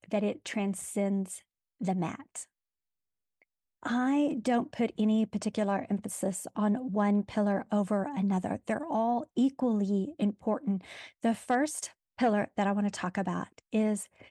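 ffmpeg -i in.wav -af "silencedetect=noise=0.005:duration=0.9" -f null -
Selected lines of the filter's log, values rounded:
silence_start: 2.43
silence_end: 3.83 | silence_duration: 1.39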